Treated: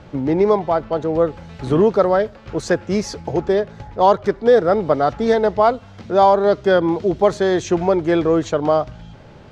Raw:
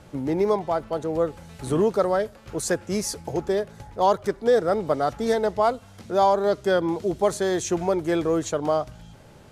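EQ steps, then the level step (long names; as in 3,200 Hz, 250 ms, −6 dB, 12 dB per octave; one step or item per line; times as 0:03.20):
high-frequency loss of the air 200 metres
high-shelf EQ 5,000 Hz +7 dB
+7.0 dB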